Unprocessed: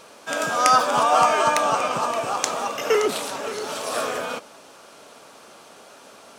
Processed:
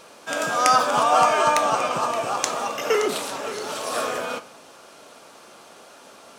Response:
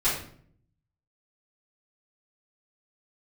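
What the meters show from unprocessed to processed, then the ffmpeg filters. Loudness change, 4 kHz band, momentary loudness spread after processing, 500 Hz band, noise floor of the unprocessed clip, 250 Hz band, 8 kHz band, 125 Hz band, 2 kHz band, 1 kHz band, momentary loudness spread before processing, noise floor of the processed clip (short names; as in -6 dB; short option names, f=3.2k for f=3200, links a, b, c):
-0.5 dB, 0.0 dB, 12 LU, -0.5 dB, -48 dBFS, 0.0 dB, -0.5 dB, 0.0 dB, 0.0 dB, 0.0 dB, 12 LU, -48 dBFS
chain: -filter_complex "[0:a]asplit=2[a][b];[1:a]atrim=start_sample=2205[c];[b][c]afir=irnorm=-1:irlink=0,volume=-22.5dB[d];[a][d]amix=inputs=2:normalize=0,volume=-1dB"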